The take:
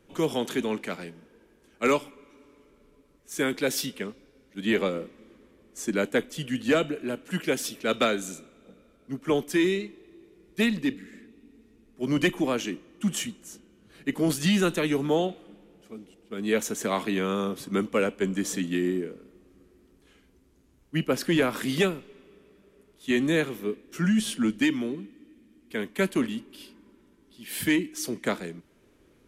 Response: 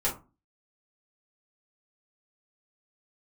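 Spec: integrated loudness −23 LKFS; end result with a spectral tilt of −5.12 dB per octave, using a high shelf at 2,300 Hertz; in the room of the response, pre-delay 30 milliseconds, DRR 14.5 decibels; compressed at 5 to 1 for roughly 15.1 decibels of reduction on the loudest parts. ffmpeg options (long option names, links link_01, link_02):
-filter_complex "[0:a]highshelf=frequency=2300:gain=-7,acompressor=threshold=-37dB:ratio=5,asplit=2[link_01][link_02];[1:a]atrim=start_sample=2205,adelay=30[link_03];[link_02][link_03]afir=irnorm=-1:irlink=0,volume=-23dB[link_04];[link_01][link_04]amix=inputs=2:normalize=0,volume=18dB"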